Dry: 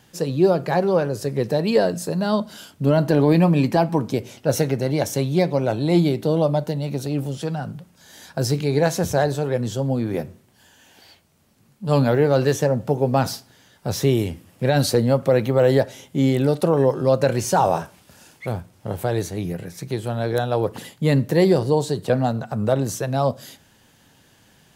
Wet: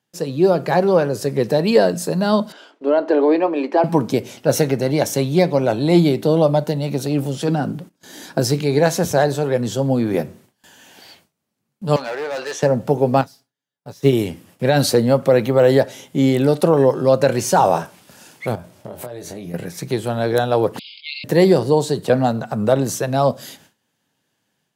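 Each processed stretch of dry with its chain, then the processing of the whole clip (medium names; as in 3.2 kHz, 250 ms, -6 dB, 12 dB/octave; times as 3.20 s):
2.52–3.84 s: steep high-pass 310 Hz + tape spacing loss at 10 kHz 27 dB
7.48–8.40 s: gate -52 dBFS, range -20 dB + peaking EQ 310 Hz +11.5 dB 0.85 oct
11.96–12.63 s: band-pass 770–6000 Hz + hard clipper -25.5 dBFS
13.21–14.13 s: companding laws mixed up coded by mu + comb 7.1 ms, depth 42% + upward expansion 2.5:1, over -28 dBFS
18.55–19.54 s: peaking EQ 610 Hz +9 dB 0.23 oct + compression 16:1, threshold -33 dBFS + doubling 24 ms -7 dB
20.79–21.24 s: brick-wall FIR band-pass 2.1–5.2 kHz + decay stretcher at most 30 dB/s
whole clip: high-pass 140 Hz 12 dB/octave; gate with hold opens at -43 dBFS; level rider gain up to 6 dB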